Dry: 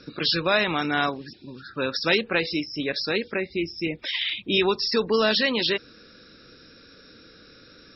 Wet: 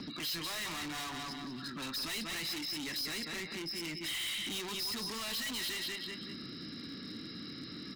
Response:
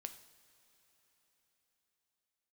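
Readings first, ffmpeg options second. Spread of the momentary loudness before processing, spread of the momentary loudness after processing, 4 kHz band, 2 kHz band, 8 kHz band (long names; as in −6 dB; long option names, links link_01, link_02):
8 LU, 9 LU, −9.5 dB, −13.5 dB, can't be measured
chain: -filter_complex "[0:a]aecho=1:1:189|378|567:0.335|0.0938|0.0263,acrossover=split=440|1000[link_01][link_02][link_03];[link_01]acompressor=mode=upward:threshold=-33dB:ratio=2.5[link_04];[link_04][link_02][link_03]amix=inputs=3:normalize=0,aecho=1:1:1:0.75,asplit=2[link_05][link_06];[link_06]acompressor=threshold=-37dB:ratio=6,volume=-1dB[link_07];[link_05][link_07]amix=inputs=2:normalize=0,asoftclip=type=tanh:threshold=-20.5dB,highpass=250,highshelf=frequency=4600:gain=-3,volume=34.5dB,asoftclip=hard,volume=-34.5dB,equalizer=frequency=650:width_type=o:width=2.6:gain=-8.5"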